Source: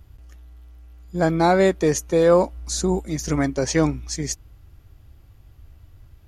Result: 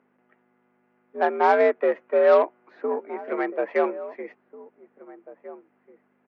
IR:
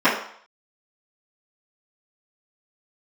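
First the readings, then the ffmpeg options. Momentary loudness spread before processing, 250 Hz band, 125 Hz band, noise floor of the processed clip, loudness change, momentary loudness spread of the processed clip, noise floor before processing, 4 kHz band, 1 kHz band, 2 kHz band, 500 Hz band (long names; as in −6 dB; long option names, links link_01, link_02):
11 LU, −11.5 dB, below −35 dB, −68 dBFS, −2.0 dB, 18 LU, −51 dBFS, below −10 dB, +1.0 dB, −0.5 dB, −0.5 dB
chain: -filter_complex "[0:a]highpass=frequency=170:width_type=q:width=0.5412,highpass=frequency=170:width_type=q:width=1.307,lowpass=frequency=2200:width_type=q:width=0.5176,lowpass=frequency=2200:width_type=q:width=0.7071,lowpass=frequency=2200:width_type=q:width=1.932,afreqshift=69,aeval=exprs='0.531*(cos(1*acos(clip(val(0)/0.531,-1,1)))-cos(1*PI/2))+0.0188*(cos(7*acos(clip(val(0)/0.531,-1,1)))-cos(7*PI/2))':channel_layout=same,aeval=exprs='val(0)+0.00562*(sin(2*PI*50*n/s)+sin(2*PI*2*50*n/s)/2+sin(2*PI*3*50*n/s)/3+sin(2*PI*4*50*n/s)/4+sin(2*PI*5*50*n/s)/5)':channel_layout=same,asplit=2[link_01][link_02];[link_02]adelay=1691,volume=-17dB,highshelf=frequency=4000:gain=-38[link_03];[link_01][link_03]amix=inputs=2:normalize=0,acrossover=split=310[link_04][link_05];[link_04]acrusher=bits=2:mix=0:aa=0.5[link_06];[link_06][link_05]amix=inputs=2:normalize=0"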